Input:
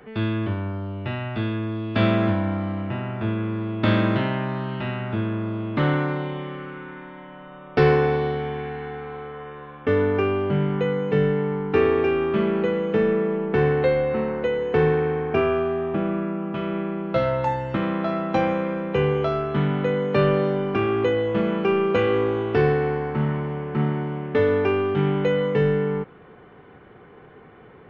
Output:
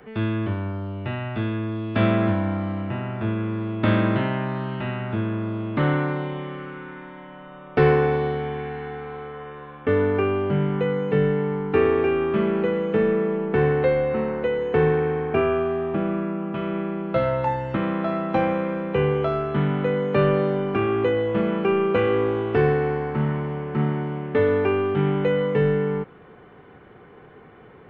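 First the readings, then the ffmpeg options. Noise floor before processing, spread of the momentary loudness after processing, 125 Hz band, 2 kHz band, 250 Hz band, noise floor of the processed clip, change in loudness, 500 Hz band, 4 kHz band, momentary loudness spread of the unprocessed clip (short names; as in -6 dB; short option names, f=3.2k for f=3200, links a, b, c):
-47 dBFS, 10 LU, 0.0 dB, -0.5 dB, 0.0 dB, -47 dBFS, 0.0 dB, 0.0 dB, -3.0 dB, 10 LU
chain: -filter_complex "[0:a]acrossover=split=3500[a][b];[b]acompressor=threshold=-59dB:ratio=4:attack=1:release=60[c];[a][c]amix=inputs=2:normalize=0"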